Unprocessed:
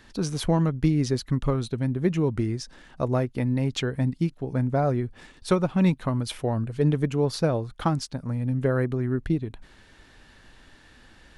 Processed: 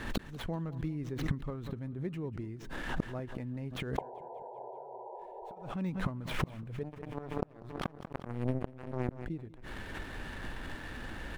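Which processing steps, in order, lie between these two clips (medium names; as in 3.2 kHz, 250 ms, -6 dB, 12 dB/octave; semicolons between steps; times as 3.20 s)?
median filter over 9 samples; de-esser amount 85%; treble shelf 4.9 kHz -4.5 dB; 6.83–9.09 s: power-law waveshaper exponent 3; inverted gate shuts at -26 dBFS, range -26 dB; 3.98–5.56 s: painted sound noise 350–1000 Hz -26 dBFS; inverted gate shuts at -29 dBFS, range -31 dB; feedback delay 192 ms, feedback 56%, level -19.5 dB; swell ahead of each attack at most 70 dB/s; trim +11 dB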